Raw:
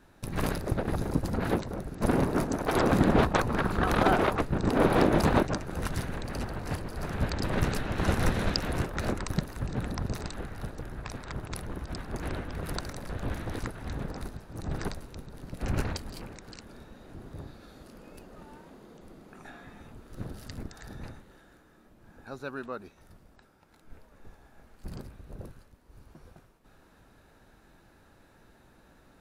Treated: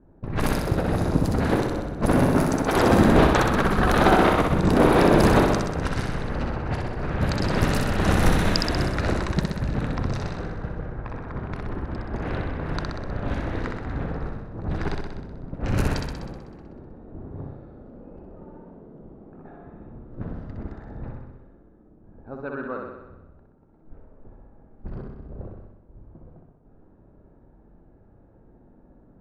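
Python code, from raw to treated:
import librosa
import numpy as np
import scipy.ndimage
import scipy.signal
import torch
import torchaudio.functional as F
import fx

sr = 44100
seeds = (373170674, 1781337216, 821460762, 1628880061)

y = fx.env_lowpass(x, sr, base_hz=500.0, full_db=-24.0)
y = fx.room_flutter(y, sr, wall_m=10.8, rt60_s=1.0)
y = F.gain(torch.from_numpy(y), 4.5).numpy()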